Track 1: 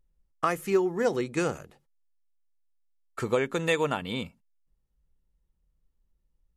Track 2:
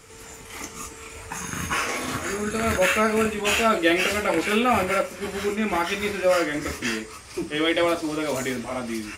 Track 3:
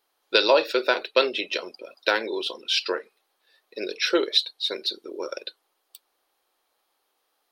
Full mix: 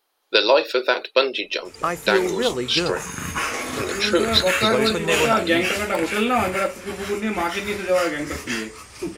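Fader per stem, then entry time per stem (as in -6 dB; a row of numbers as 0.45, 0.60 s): +3.0, +0.5, +2.5 dB; 1.40, 1.65, 0.00 s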